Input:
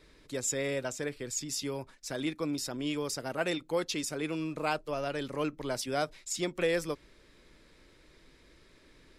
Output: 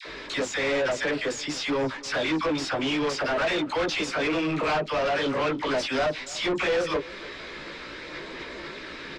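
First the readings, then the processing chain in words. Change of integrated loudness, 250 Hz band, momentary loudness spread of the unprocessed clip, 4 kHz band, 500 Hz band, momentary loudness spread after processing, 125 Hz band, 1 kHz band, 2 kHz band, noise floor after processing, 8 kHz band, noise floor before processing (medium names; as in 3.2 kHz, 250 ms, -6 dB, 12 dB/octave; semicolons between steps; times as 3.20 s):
+7.0 dB, +6.5 dB, 6 LU, +9.0 dB, +7.5 dB, 12 LU, +3.5 dB, +9.5 dB, +11.0 dB, -40 dBFS, -2.0 dB, -61 dBFS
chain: in parallel at +3 dB: compression, threshold -43 dBFS, peak gain reduction 17 dB; on the sum: phase dispersion lows, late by 59 ms, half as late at 880 Hz; chorus voices 6, 0.99 Hz, delay 17 ms, depth 3 ms; overdrive pedal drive 29 dB, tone 6.1 kHz, clips at -17.5 dBFS; distance through air 130 m; on a send: delay 289 ms -20.5 dB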